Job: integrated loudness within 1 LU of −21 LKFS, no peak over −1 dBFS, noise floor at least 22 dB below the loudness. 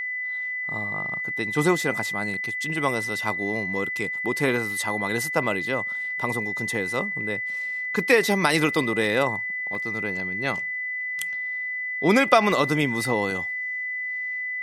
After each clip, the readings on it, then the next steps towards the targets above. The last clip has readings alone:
number of dropouts 4; longest dropout 1.3 ms; interfering tone 2,000 Hz; level of the tone −27 dBFS; integrated loudness −24.5 LKFS; sample peak −1.5 dBFS; target loudness −21.0 LKFS
→ repair the gap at 0:02.34/0:09.03/0:09.75/0:12.52, 1.3 ms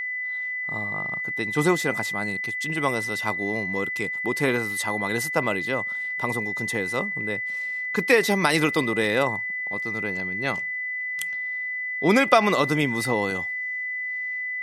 number of dropouts 0; interfering tone 2,000 Hz; level of the tone −27 dBFS
→ notch filter 2,000 Hz, Q 30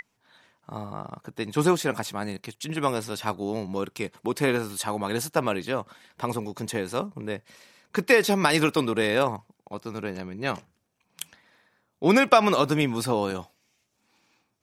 interfering tone none found; integrated loudness −26.0 LKFS; sample peak −1.5 dBFS; target loudness −21.0 LKFS
→ level +5 dB
brickwall limiter −1 dBFS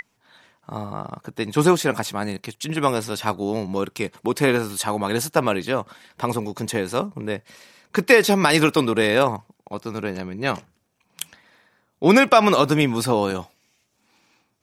integrated loudness −21.0 LKFS; sample peak −1.0 dBFS; background noise floor −70 dBFS

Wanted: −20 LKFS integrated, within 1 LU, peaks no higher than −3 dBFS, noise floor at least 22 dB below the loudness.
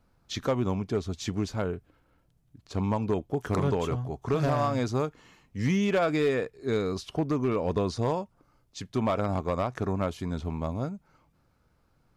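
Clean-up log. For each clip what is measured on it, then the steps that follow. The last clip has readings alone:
share of clipped samples 0.6%; peaks flattened at −19.0 dBFS; integrated loudness −29.5 LKFS; sample peak −19.0 dBFS; target loudness −20.0 LKFS
→ clipped peaks rebuilt −19 dBFS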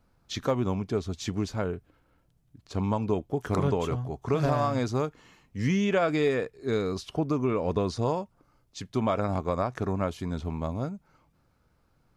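share of clipped samples 0.0%; integrated loudness −29.0 LKFS; sample peak −13.0 dBFS; target loudness −20.0 LKFS
→ level +9 dB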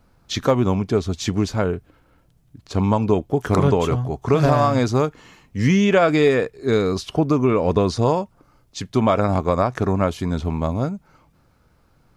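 integrated loudness −20.0 LKFS; sample peak −4.0 dBFS; background noise floor −59 dBFS

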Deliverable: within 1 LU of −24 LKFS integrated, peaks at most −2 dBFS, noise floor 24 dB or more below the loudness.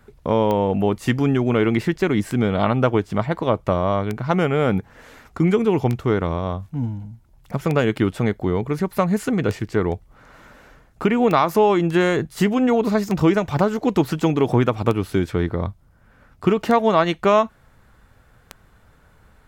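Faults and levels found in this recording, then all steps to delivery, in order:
number of clicks 11; integrated loudness −20.5 LKFS; sample peak −4.5 dBFS; target loudness −24.0 LKFS
→ click removal
level −3.5 dB

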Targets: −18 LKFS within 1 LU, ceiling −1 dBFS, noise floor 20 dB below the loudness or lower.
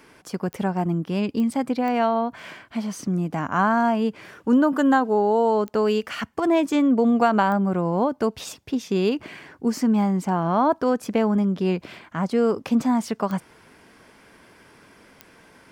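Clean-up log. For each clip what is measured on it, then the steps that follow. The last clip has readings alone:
number of clicks 7; integrated loudness −22.5 LKFS; sample peak −7.5 dBFS; target loudness −18.0 LKFS
→ click removal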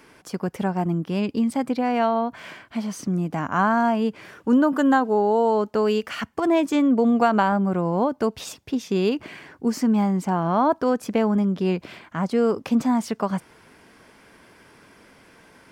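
number of clicks 0; integrated loudness −22.5 LKFS; sample peak −7.5 dBFS; target loudness −18.0 LKFS
→ level +4.5 dB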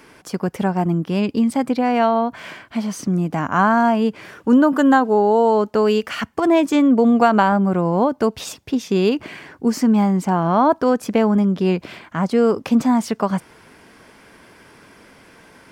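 integrated loudness −18.0 LKFS; sample peak −3.0 dBFS; background noise floor −49 dBFS

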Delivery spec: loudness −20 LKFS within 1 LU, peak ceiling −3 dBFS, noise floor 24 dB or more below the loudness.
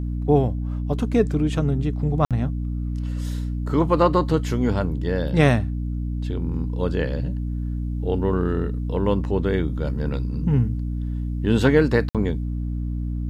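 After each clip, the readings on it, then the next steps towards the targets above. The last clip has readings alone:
number of dropouts 2; longest dropout 57 ms; mains hum 60 Hz; hum harmonics up to 300 Hz; level of the hum −23 dBFS; integrated loudness −23.0 LKFS; sample peak −4.0 dBFS; target loudness −20.0 LKFS
→ repair the gap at 0:02.25/0:12.09, 57 ms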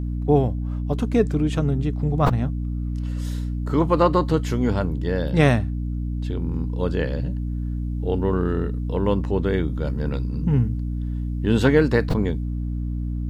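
number of dropouts 0; mains hum 60 Hz; hum harmonics up to 300 Hz; level of the hum −23 dBFS
→ hum removal 60 Hz, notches 5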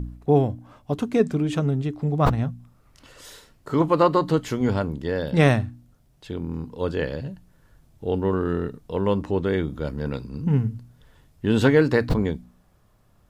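mains hum none found; integrated loudness −23.5 LKFS; sample peak −5.5 dBFS; target loudness −20.0 LKFS
→ level +3.5 dB
brickwall limiter −3 dBFS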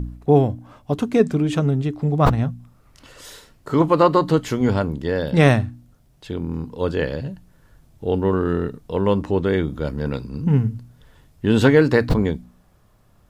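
integrated loudness −20.0 LKFS; sample peak −3.0 dBFS; background noise floor −56 dBFS

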